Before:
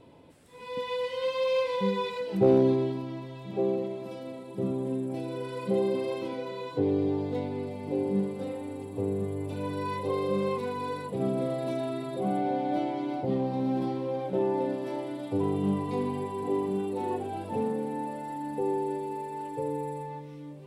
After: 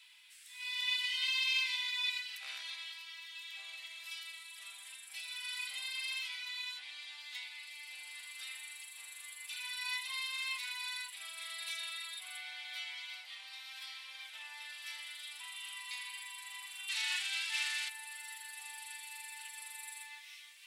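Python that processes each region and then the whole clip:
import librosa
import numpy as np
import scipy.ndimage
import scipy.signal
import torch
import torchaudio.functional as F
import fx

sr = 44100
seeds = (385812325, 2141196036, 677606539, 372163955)

y = fx.envelope_flatten(x, sr, power=0.6, at=(16.88, 17.88), fade=0.02)
y = fx.lowpass(y, sr, hz=5800.0, slope=12, at=(16.88, 17.88), fade=0.02)
y = fx.rider(y, sr, range_db=4, speed_s=2.0)
y = scipy.signal.sosfilt(scipy.signal.cheby2(4, 70, 460.0, 'highpass', fs=sr, output='sos'), y)
y = y * librosa.db_to_amplitude(9.0)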